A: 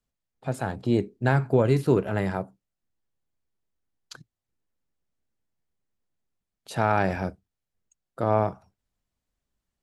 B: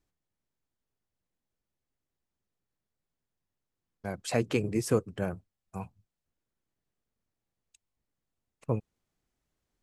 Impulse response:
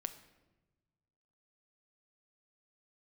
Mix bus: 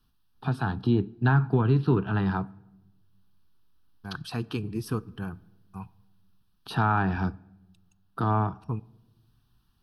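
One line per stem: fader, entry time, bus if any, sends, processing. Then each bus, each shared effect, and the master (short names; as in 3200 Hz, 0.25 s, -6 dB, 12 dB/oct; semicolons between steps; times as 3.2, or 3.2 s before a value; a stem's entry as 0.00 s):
+1.0 dB, 0.00 s, send -9 dB, treble ducked by the level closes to 2500 Hz, closed at -18 dBFS; three-band squash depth 40%
-2.0 dB, 0.00 s, send -6.5 dB, dry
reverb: on, RT60 1.1 s, pre-delay 7 ms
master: fixed phaser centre 2100 Hz, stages 6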